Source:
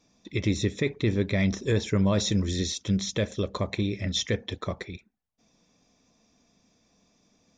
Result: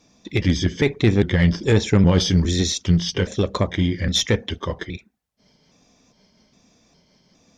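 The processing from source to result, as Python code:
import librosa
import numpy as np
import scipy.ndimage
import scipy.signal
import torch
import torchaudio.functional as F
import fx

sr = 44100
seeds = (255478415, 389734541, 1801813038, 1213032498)

y = fx.pitch_trill(x, sr, semitones=-2.0, every_ms=408)
y = fx.cheby_harmonics(y, sr, harmonics=(4, 6), levels_db=(-18, -26), full_scale_db=-13.5)
y = y * 10.0 ** (8.0 / 20.0)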